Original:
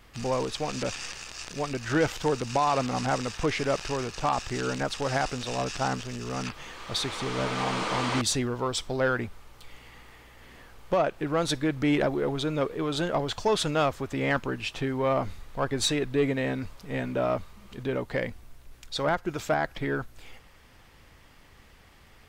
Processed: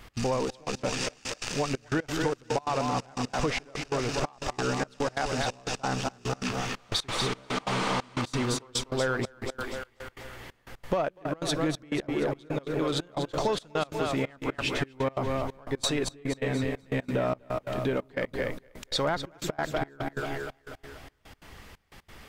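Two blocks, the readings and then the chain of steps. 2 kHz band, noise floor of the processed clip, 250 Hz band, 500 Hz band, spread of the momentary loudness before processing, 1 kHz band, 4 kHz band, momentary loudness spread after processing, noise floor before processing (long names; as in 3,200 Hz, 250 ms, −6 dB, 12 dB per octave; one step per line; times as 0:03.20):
−1.5 dB, −63 dBFS, −1.5 dB, −2.0 dB, 8 LU, −2.5 dB, −0.5 dB, 8 LU, −55 dBFS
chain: on a send: echo with a time of its own for lows and highs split 330 Hz, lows 174 ms, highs 242 ms, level −6.5 dB
on the sum: downward compressor, threshold −30 dBFS, peak gain reduction 10.5 dB
gate pattern "x.xxxx..x.xxx.." 180 BPM −24 dB
level +5.5 dB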